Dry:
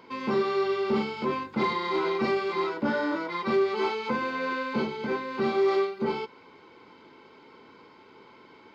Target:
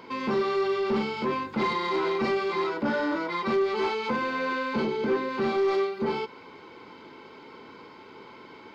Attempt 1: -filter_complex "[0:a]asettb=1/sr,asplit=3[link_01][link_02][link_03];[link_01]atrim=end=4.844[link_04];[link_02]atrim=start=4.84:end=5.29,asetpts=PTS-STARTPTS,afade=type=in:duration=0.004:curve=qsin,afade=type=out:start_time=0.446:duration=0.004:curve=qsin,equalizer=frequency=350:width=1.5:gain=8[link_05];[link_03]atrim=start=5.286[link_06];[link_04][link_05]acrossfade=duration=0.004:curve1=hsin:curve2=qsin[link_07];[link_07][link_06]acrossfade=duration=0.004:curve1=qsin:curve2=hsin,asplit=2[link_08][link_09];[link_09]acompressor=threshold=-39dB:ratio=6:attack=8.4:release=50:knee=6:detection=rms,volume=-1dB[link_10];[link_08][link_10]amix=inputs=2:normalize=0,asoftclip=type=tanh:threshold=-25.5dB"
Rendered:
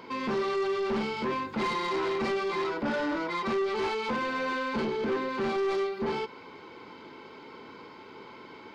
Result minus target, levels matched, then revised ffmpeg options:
soft clipping: distortion +8 dB
-filter_complex "[0:a]asettb=1/sr,asplit=3[link_01][link_02][link_03];[link_01]atrim=end=4.844[link_04];[link_02]atrim=start=4.84:end=5.29,asetpts=PTS-STARTPTS,afade=type=in:duration=0.004:curve=qsin,afade=type=out:start_time=0.446:duration=0.004:curve=qsin,equalizer=frequency=350:width=1.5:gain=8[link_05];[link_03]atrim=start=5.286[link_06];[link_04][link_05]acrossfade=duration=0.004:curve1=hsin:curve2=qsin[link_07];[link_07][link_06]acrossfade=duration=0.004:curve1=qsin:curve2=hsin,asplit=2[link_08][link_09];[link_09]acompressor=threshold=-39dB:ratio=6:attack=8.4:release=50:knee=6:detection=rms,volume=-1dB[link_10];[link_08][link_10]amix=inputs=2:normalize=0,asoftclip=type=tanh:threshold=-18.5dB"

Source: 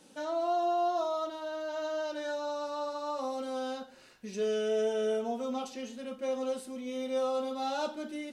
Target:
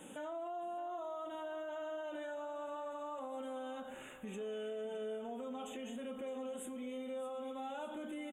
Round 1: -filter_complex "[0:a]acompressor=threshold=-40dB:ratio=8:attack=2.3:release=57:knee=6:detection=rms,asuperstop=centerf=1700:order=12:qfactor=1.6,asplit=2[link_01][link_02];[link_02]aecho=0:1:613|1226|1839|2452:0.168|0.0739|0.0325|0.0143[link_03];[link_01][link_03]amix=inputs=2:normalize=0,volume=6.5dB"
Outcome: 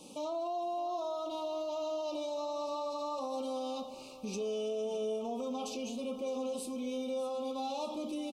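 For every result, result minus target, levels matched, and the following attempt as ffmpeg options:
2,000 Hz band −10.0 dB; downward compressor: peak gain reduction −6.5 dB
-filter_complex "[0:a]acompressor=threshold=-40dB:ratio=8:attack=2.3:release=57:knee=6:detection=rms,asuperstop=centerf=4900:order=12:qfactor=1.6,asplit=2[link_01][link_02];[link_02]aecho=0:1:613|1226|1839|2452:0.168|0.0739|0.0325|0.0143[link_03];[link_01][link_03]amix=inputs=2:normalize=0,volume=6.5dB"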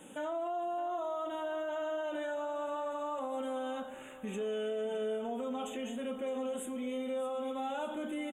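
downward compressor: peak gain reduction −6.5 dB
-filter_complex "[0:a]acompressor=threshold=-47.5dB:ratio=8:attack=2.3:release=57:knee=6:detection=rms,asuperstop=centerf=4900:order=12:qfactor=1.6,asplit=2[link_01][link_02];[link_02]aecho=0:1:613|1226|1839|2452:0.168|0.0739|0.0325|0.0143[link_03];[link_01][link_03]amix=inputs=2:normalize=0,volume=6.5dB"

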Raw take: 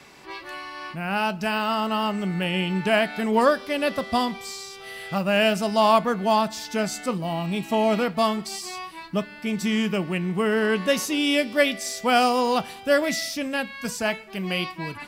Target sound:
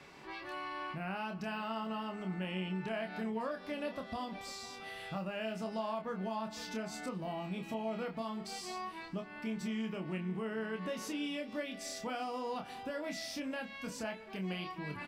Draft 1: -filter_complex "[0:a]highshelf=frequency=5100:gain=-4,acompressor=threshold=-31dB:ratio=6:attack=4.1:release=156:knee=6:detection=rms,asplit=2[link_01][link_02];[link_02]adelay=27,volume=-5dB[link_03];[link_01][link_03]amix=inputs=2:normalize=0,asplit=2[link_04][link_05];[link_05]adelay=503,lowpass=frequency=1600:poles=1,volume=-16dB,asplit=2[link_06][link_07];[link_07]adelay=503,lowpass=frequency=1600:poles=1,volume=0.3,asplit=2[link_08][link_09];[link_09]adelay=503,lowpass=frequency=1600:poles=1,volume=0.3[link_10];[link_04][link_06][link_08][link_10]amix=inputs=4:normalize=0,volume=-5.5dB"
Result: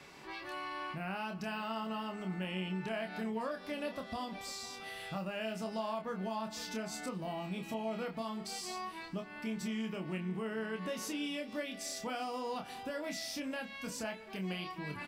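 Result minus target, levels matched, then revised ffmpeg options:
8,000 Hz band +3.5 dB
-filter_complex "[0:a]highshelf=frequency=5100:gain=-11,acompressor=threshold=-31dB:ratio=6:attack=4.1:release=156:knee=6:detection=rms,asplit=2[link_01][link_02];[link_02]adelay=27,volume=-5dB[link_03];[link_01][link_03]amix=inputs=2:normalize=0,asplit=2[link_04][link_05];[link_05]adelay=503,lowpass=frequency=1600:poles=1,volume=-16dB,asplit=2[link_06][link_07];[link_07]adelay=503,lowpass=frequency=1600:poles=1,volume=0.3,asplit=2[link_08][link_09];[link_09]adelay=503,lowpass=frequency=1600:poles=1,volume=0.3[link_10];[link_04][link_06][link_08][link_10]amix=inputs=4:normalize=0,volume=-5.5dB"

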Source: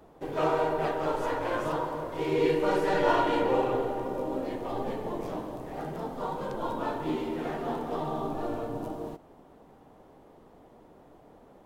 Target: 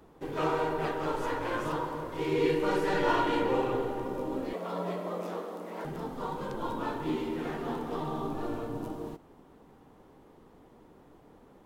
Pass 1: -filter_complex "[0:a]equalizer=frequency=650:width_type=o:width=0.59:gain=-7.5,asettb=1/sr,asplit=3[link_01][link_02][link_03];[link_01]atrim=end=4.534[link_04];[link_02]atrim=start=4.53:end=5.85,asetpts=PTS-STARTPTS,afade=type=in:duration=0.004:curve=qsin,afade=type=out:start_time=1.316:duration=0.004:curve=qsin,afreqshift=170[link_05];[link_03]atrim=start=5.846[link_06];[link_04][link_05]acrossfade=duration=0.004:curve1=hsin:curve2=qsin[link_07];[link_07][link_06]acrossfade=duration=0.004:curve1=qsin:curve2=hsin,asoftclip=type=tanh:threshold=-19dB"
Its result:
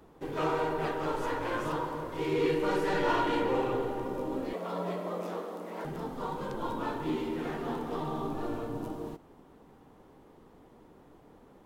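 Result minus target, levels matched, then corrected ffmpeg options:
soft clipping: distortion +14 dB
-filter_complex "[0:a]equalizer=frequency=650:width_type=o:width=0.59:gain=-7.5,asettb=1/sr,asplit=3[link_01][link_02][link_03];[link_01]atrim=end=4.534[link_04];[link_02]atrim=start=4.53:end=5.85,asetpts=PTS-STARTPTS,afade=type=in:duration=0.004:curve=qsin,afade=type=out:start_time=1.316:duration=0.004:curve=qsin,afreqshift=170[link_05];[link_03]atrim=start=5.846[link_06];[link_04][link_05]acrossfade=duration=0.004:curve1=hsin:curve2=qsin[link_07];[link_07][link_06]acrossfade=duration=0.004:curve1=qsin:curve2=hsin,asoftclip=type=tanh:threshold=-11dB"

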